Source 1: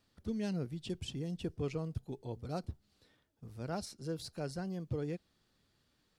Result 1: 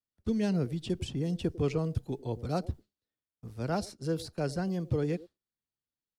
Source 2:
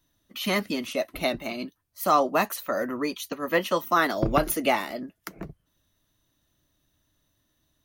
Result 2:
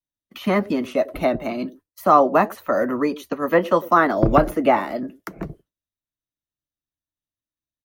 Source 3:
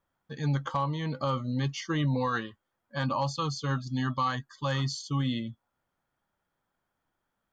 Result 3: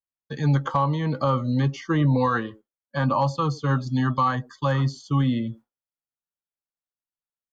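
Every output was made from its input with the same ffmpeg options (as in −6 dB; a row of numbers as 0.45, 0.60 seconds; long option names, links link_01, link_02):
-filter_complex "[0:a]agate=range=-33dB:threshold=-46dB:ratio=3:detection=peak,acrossover=split=310|520|1800[link_01][link_02][link_03][link_04];[link_02]aecho=1:1:98:0.335[link_05];[link_04]acompressor=threshold=-50dB:ratio=6[link_06];[link_01][link_05][link_03][link_06]amix=inputs=4:normalize=0,volume=7.5dB"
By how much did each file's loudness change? +7.5, +6.0, +7.0 LU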